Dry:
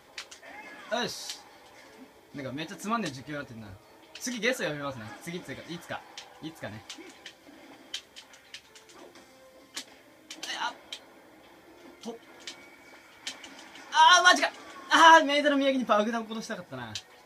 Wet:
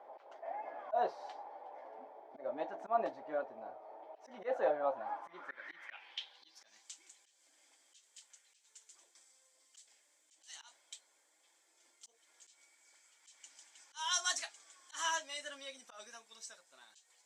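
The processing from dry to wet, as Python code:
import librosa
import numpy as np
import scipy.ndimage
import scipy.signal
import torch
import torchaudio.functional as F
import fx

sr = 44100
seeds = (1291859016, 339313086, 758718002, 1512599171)

y = scipy.signal.sosfilt(scipy.signal.butter(2, 390.0, 'highpass', fs=sr, output='sos'), x)
y = fx.tilt_eq(y, sr, slope=-2.5)
y = fx.auto_swell(y, sr, attack_ms=142.0)
y = fx.filter_sweep_bandpass(y, sr, from_hz=720.0, to_hz=7700.0, start_s=4.98, end_s=6.89, q=4.5)
y = y * 10.0 ** (10.0 / 20.0)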